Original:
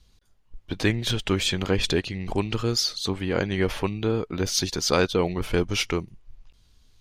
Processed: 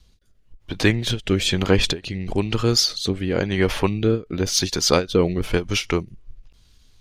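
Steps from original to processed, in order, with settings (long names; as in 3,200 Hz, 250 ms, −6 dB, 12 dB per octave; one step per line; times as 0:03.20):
rotating-speaker cabinet horn 1 Hz
every ending faded ahead of time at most 250 dB per second
level +6.5 dB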